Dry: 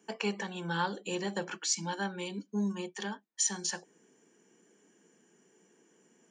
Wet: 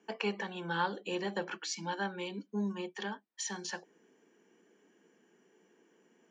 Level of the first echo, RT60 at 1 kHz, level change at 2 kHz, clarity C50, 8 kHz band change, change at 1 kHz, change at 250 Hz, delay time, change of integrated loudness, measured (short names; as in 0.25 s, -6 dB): none, none, 0.0 dB, none, -10.0 dB, 0.0 dB, -2.5 dB, none, -3.0 dB